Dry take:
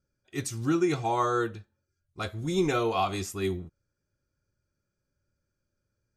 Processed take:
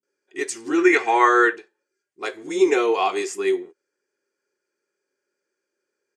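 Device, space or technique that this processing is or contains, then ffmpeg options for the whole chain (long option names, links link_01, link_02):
phone speaker on a table: -filter_complex "[0:a]highpass=frequency=340:width=0.5412,highpass=frequency=340:width=1.3066,equalizer=frequency=400:width_type=q:width=4:gain=9,equalizer=frequency=610:width_type=q:width=4:gain=-8,equalizer=frequency=1300:width_type=q:width=4:gain=-6,equalizer=frequency=1900:width_type=q:width=4:gain=5,equalizer=frequency=3800:width_type=q:width=4:gain=-8,equalizer=frequency=5700:width_type=q:width=4:gain=-4,lowpass=frequency=8800:width=0.5412,lowpass=frequency=8800:width=1.3066,asettb=1/sr,asplit=3[link_01][link_02][link_03];[link_01]atrim=end=0.754[link_04];[link_02]atrim=start=0.75:end=1.53,asetpts=PTS-STARTPTS,afade=type=in:duration=0.004:curve=qsin,afade=type=out:start_time=0.776:duration=0.004:curve=qsin,equalizer=frequency=1800:width_type=o:width=1.2:gain=13[link_05];[link_03]atrim=start=1.526[link_06];[link_04][link_05]acrossfade=duration=0.004:curve1=hsin:curve2=qsin[link_07];[link_07][link_06]acrossfade=duration=0.004:curve1=qsin:curve2=hsin,acrossover=split=270[link_08][link_09];[link_09]adelay=30[link_10];[link_08][link_10]amix=inputs=2:normalize=0,volume=8dB"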